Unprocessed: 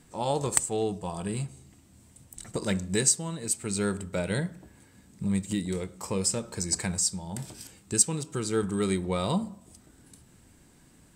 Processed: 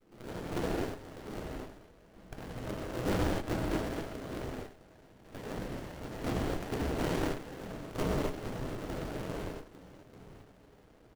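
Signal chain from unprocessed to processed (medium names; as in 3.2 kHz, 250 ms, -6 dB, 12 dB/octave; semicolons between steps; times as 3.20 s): expander -55 dBFS; steep high-pass 1.8 kHz 72 dB/octave; treble shelf 8 kHz +3 dB; in parallel at +2 dB: compression 10:1, threshold -41 dBFS, peak gain reduction 26 dB; on the sum: integer overflow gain 17.5 dB; wow and flutter 16 cents; decimation with a swept rate 19×, swing 100% 2.4 Hz; delay 101 ms -15 dB; gated-style reverb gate 300 ms flat, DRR -8 dB; sliding maximum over 33 samples; trim -8.5 dB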